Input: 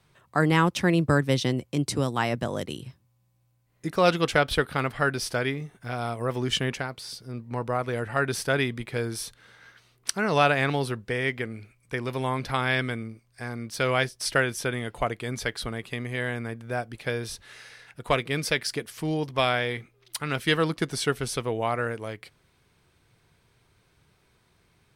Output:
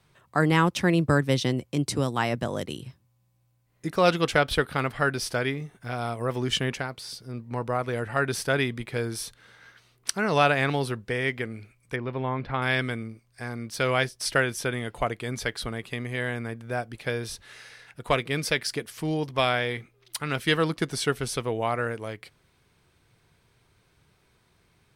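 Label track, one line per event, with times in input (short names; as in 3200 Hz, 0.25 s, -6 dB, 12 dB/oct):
11.960000	12.620000	air absorption 390 m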